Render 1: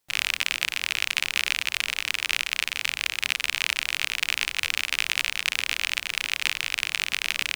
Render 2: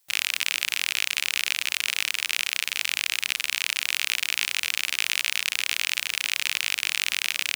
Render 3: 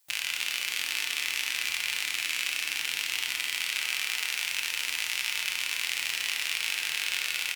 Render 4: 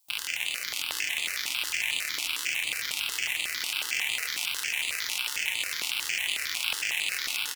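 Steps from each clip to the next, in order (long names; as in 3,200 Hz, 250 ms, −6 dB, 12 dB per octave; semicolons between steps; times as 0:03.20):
high-pass filter 50 Hz; spectral tilt +2.5 dB per octave; in parallel at +0.5 dB: compressor whose output falls as the input rises −29 dBFS, ratio −1; on the sum: level −7.5 dB
brickwall limiter −9.5 dBFS, peak gain reduction 7 dB; double-tracking delay 24 ms −11 dB; feedback delay network reverb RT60 3.9 s, high-frequency decay 0.45×, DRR −0.5 dB; level −1.5 dB
in parallel at −10 dB: bit reduction 6 bits; on the sum: single-tap delay 833 ms −5 dB; step-sequenced phaser 11 Hz 450–5,500 Hz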